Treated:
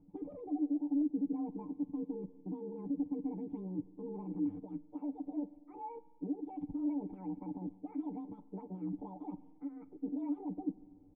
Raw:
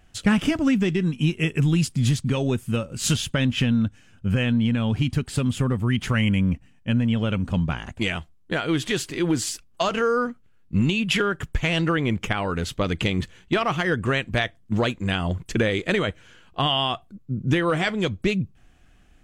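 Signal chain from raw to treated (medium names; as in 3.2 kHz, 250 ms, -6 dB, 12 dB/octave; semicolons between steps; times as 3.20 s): rotating-head pitch shifter +11 st; comb 6.7 ms, depth 81%; dynamic bell 420 Hz, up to -3 dB, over -31 dBFS, Q 1.9; reverse; compression 16:1, threshold -29 dBFS, peak gain reduction 16.5 dB; reverse; peak limiter -27.5 dBFS, peak gain reduction 9.5 dB; time stretch by phase-locked vocoder 0.58×; cascade formant filter u; spring tank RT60 1.7 s, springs 48 ms, chirp 50 ms, DRR 18 dB; trim +5 dB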